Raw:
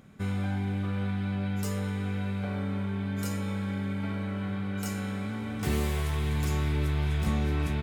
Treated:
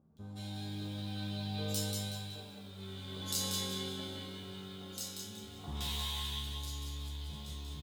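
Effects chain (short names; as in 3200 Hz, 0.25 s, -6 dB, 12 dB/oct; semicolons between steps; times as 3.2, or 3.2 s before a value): Doppler pass-by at 2.63, 12 m/s, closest 2.8 m; spectral gain 5.58–6.23, 650–4000 Hz +8 dB; bands offset in time lows, highs 0.17 s, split 1200 Hz; negative-ratio compressor -43 dBFS, ratio -1; resonant high shelf 2800 Hz +9 dB, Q 3; notches 60/120/180/240/300/360/420/480/540 Hz; resonator 77 Hz, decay 0.23 s, harmonics all, mix 90%; lo-fi delay 0.186 s, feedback 35%, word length 12-bit, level -4 dB; gain +11.5 dB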